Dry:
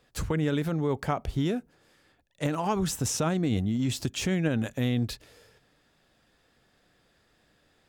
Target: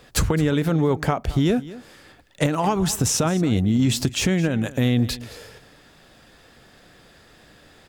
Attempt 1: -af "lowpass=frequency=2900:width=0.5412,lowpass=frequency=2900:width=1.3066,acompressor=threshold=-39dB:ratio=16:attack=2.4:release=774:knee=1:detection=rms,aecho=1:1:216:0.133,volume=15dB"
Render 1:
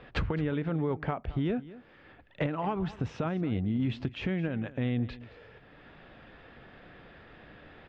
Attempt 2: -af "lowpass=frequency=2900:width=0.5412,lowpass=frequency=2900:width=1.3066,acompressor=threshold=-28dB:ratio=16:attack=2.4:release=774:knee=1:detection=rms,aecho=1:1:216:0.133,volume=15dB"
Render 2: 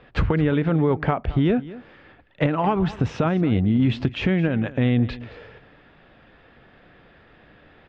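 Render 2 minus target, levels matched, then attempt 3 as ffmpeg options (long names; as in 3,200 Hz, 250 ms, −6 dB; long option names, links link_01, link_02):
4,000 Hz band −7.5 dB
-af "acompressor=threshold=-28dB:ratio=16:attack=2.4:release=774:knee=1:detection=rms,aecho=1:1:216:0.133,volume=15dB"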